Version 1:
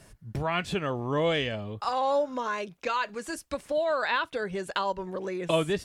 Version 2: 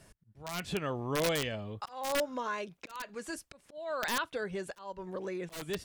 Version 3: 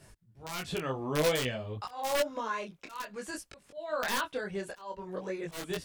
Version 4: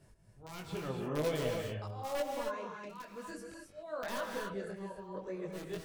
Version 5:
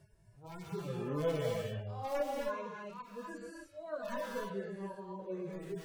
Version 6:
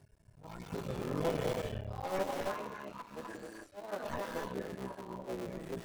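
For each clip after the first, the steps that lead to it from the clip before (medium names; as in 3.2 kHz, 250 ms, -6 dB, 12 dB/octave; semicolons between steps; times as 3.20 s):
integer overflow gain 18.5 dB; slow attack 351 ms; trim -4.5 dB
detune thickener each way 19 cents; trim +5 dB
tilt shelf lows +4 dB, about 830 Hz; gated-style reverb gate 300 ms rising, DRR 1.5 dB; trim -8 dB
harmonic-percussive separation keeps harmonic; trim +1 dB
cycle switcher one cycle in 3, muted; trim +2 dB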